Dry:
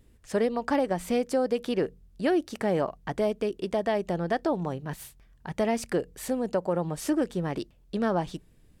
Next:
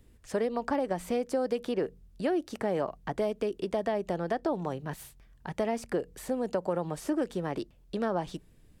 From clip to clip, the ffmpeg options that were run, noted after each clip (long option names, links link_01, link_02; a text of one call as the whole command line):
ffmpeg -i in.wav -filter_complex "[0:a]acrossover=split=310|1400[link_01][link_02][link_03];[link_01]acompressor=threshold=-37dB:ratio=4[link_04];[link_02]acompressor=threshold=-27dB:ratio=4[link_05];[link_03]acompressor=threshold=-45dB:ratio=4[link_06];[link_04][link_05][link_06]amix=inputs=3:normalize=0" out.wav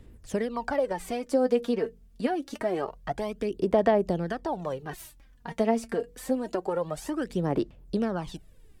ffmpeg -i in.wav -af "aphaser=in_gain=1:out_gain=1:delay=4.5:decay=0.63:speed=0.26:type=sinusoidal" out.wav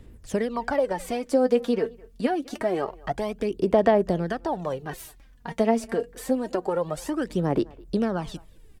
ffmpeg -i in.wav -filter_complex "[0:a]asplit=2[link_01][link_02];[link_02]adelay=210,highpass=300,lowpass=3400,asoftclip=type=hard:threshold=-19.5dB,volume=-23dB[link_03];[link_01][link_03]amix=inputs=2:normalize=0,volume=3dB" out.wav